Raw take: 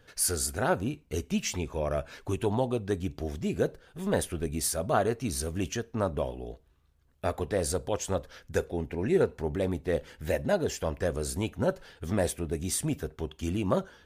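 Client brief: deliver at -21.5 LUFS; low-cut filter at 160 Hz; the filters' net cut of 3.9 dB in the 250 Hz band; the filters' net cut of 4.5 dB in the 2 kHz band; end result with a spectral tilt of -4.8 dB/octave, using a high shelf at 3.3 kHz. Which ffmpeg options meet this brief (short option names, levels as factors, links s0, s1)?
-af "highpass=160,equalizer=f=250:t=o:g=-4,equalizer=f=2000:t=o:g=-4.5,highshelf=f=3300:g=-6,volume=3.98"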